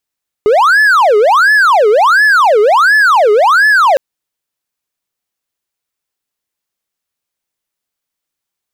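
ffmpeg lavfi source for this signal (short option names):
-f lavfi -i "aevalsrc='0.708*(1-4*abs(mod((1071*t-659/(2*PI*1.4)*sin(2*PI*1.4*t))+0.25,1)-0.5))':d=3.51:s=44100"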